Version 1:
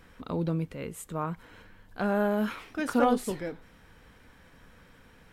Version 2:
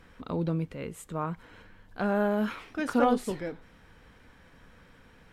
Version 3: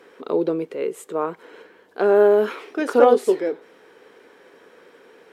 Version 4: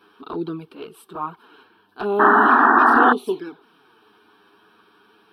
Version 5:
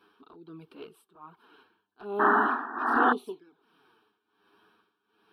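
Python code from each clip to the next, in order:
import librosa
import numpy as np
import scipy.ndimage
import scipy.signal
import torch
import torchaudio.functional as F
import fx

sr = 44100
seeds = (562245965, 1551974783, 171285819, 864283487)

y1 = fx.high_shelf(x, sr, hz=9800.0, db=-9.0)
y2 = fx.highpass_res(y1, sr, hz=400.0, q=4.9)
y2 = F.gain(torch.from_numpy(y2), 5.0).numpy()
y3 = fx.env_flanger(y2, sr, rest_ms=10.6, full_db=-15.0)
y3 = fx.spec_paint(y3, sr, seeds[0], shape='noise', start_s=2.19, length_s=0.94, low_hz=220.0, high_hz=1900.0, level_db=-14.0)
y3 = fx.fixed_phaser(y3, sr, hz=2000.0, stages=6)
y3 = F.gain(torch.from_numpy(y3), 3.5).numpy()
y4 = y3 * (1.0 - 0.86 / 2.0 + 0.86 / 2.0 * np.cos(2.0 * np.pi * 1.3 * (np.arange(len(y3)) / sr)))
y4 = F.gain(torch.from_numpy(y4), -8.0).numpy()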